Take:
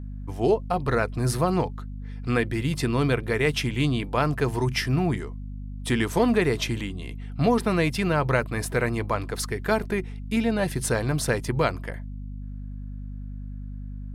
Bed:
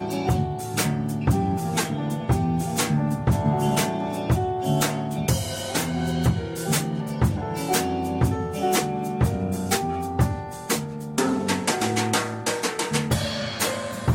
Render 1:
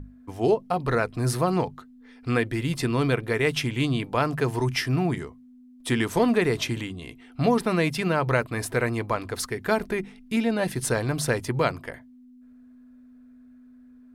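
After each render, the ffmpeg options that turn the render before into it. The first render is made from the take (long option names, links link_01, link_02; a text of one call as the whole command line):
ffmpeg -i in.wav -af "bandreject=frequency=50:width_type=h:width=6,bandreject=frequency=100:width_type=h:width=6,bandreject=frequency=150:width_type=h:width=6,bandreject=frequency=200:width_type=h:width=6" out.wav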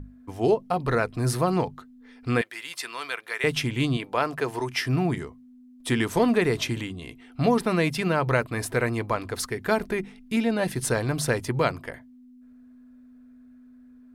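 ffmpeg -i in.wav -filter_complex "[0:a]asettb=1/sr,asplit=3[link_01][link_02][link_03];[link_01]atrim=end=2.414[link_04];[link_02]atrim=start=2.41:end=3.44,asetpts=PTS-STARTPTS,afade=type=in:duration=0.004:curve=qsin,afade=type=out:start_time=1.026:duration=0.004:curve=qsin,highpass=1100[link_05];[link_03]atrim=start=3.436[link_06];[link_04][link_05]acrossfade=duration=0.004:curve1=hsin:curve2=qsin[link_07];[link_07][link_06]acrossfade=duration=0.004:curve1=qsin:curve2=hsin,asettb=1/sr,asplit=3[link_08][link_09][link_10];[link_08]atrim=end=3.974[link_11];[link_09]atrim=start=3.97:end=4.86,asetpts=PTS-STARTPTS,afade=type=in:duration=0.004:curve=qsin,afade=type=out:start_time=0.886:duration=0.004:curve=qsin,bass=frequency=250:gain=-12,treble=frequency=4000:gain=-2[link_12];[link_10]atrim=start=4.856[link_13];[link_11][link_12]acrossfade=duration=0.004:curve1=hsin:curve2=qsin[link_14];[link_14][link_13]acrossfade=duration=0.004:curve1=qsin:curve2=hsin" out.wav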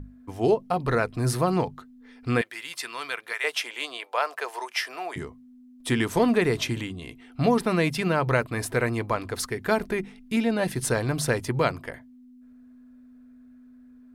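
ffmpeg -i in.wav -filter_complex "[0:a]asettb=1/sr,asplit=3[link_01][link_02][link_03];[link_01]atrim=end=3.334[link_04];[link_02]atrim=start=3.33:end=5.16,asetpts=PTS-STARTPTS,afade=type=in:duration=0.004:curve=qsin,afade=type=out:start_time=1.826:duration=0.004:curve=qsin,highpass=frequency=530:width=0.5412,highpass=frequency=530:width=1.3066[link_05];[link_03]atrim=start=5.156[link_06];[link_04][link_05]acrossfade=duration=0.004:curve1=hsin:curve2=qsin[link_07];[link_07][link_06]acrossfade=duration=0.004:curve1=qsin:curve2=hsin" out.wav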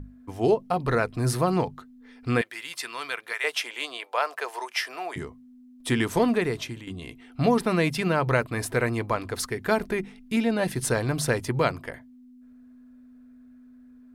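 ffmpeg -i in.wav -filter_complex "[0:a]asplit=2[link_01][link_02];[link_01]atrim=end=6.87,asetpts=PTS-STARTPTS,afade=type=out:start_time=6.15:duration=0.72:silence=0.251189[link_03];[link_02]atrim=start=6.87,asetpts=PTS-STARTPTS,afade=type=in:duration=0.004:curve=hsin:silence=0.251189[link_04];[link_03][link_04]concat=n=2:v=0:a=1" out.wav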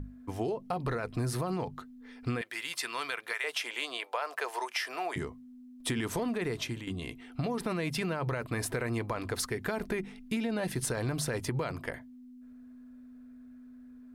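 ffmpeg -i in.wav -af "alimiter=limit=-18.5dB:level=0:latency=1:release=31,acompressor=threshold=-29dB:ratio=6" out.wav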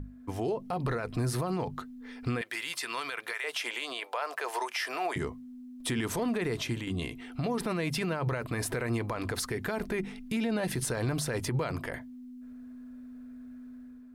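ffmpeg -i in.wav -af "dynaudnorm=framelen=110:gausssize=7:maxgain=5dB,alimiter=limit=-23dB:level=0:latency=1:release=56" out.wav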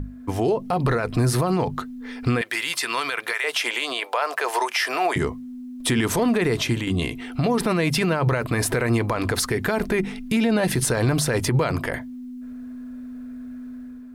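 ffmpeg -i in.wav -af "volume=10dB" out.wav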